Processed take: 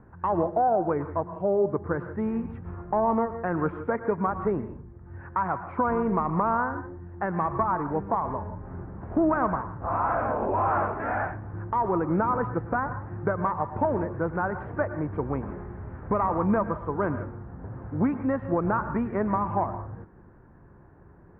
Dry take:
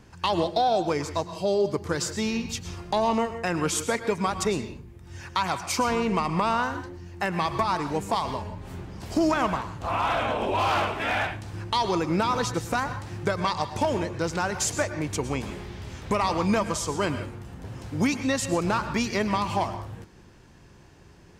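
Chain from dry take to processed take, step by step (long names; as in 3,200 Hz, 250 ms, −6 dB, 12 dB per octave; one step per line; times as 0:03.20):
Butterworth low-pass 1,600 Hz 36 dB per octave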